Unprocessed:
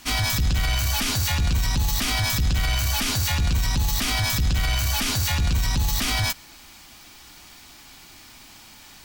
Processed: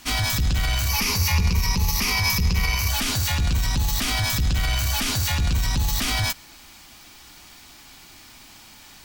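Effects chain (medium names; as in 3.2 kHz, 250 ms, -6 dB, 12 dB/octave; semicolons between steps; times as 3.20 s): 0.89–2.89 s: rippled EQ curve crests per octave 0.83, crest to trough 11 dB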